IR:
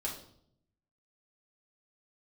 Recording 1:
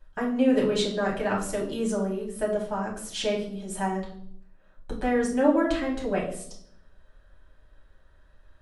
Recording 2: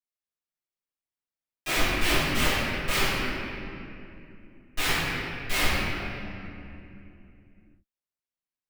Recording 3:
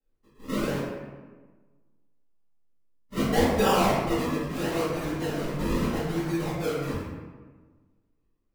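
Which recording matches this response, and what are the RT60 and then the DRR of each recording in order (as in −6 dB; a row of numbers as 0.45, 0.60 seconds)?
1; 0.65, 2.7, 1.4 seconds; −4.5, −18.0, −15.5 decibels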